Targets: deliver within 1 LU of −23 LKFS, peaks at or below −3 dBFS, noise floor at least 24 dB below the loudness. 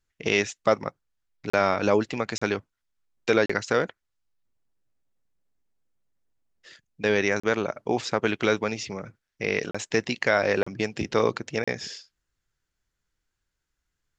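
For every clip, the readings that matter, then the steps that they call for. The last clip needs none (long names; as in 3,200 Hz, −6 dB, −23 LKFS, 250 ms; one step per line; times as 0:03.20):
number of dropouts 7; longest dropout 35 ms; integrated loudness −26.0 LKFS; sample peak −6.5 dBFS; target loudness −23.0 LKFS
→ repair the gap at 0:01.50/0:02.38/0:03.46/0:07.40/0:09.71/0:10.63/0:11.64, 35 ms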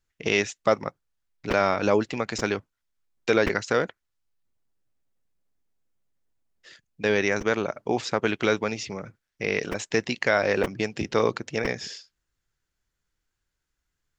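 number of dropouts 0; integrated loudness −26.0 LKFS; sample peak −6.5 dBFS; target loudness −23.0 LKFS
→ level +3 dB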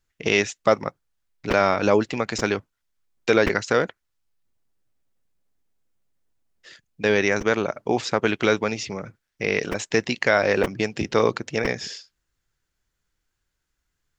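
integrated loudness −23.0 LKFS; sample peak −3.5 dBFS; background noise floor −79 dBFS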